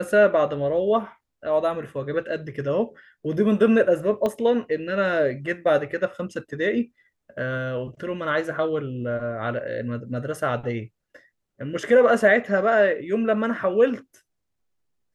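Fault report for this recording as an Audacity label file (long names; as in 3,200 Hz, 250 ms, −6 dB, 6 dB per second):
4.260000	4.260000	click −14 dBFS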